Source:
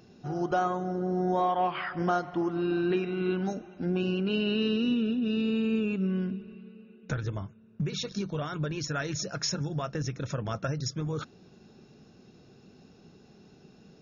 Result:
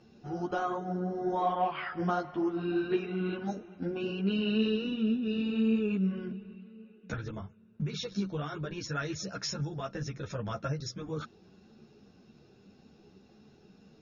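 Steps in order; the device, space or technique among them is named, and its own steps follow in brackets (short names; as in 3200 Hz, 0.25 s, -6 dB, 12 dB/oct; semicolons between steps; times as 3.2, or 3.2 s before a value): string-machine ensemble chorus (ensemble effect; LPF 6200 Hz 12 dB/oct)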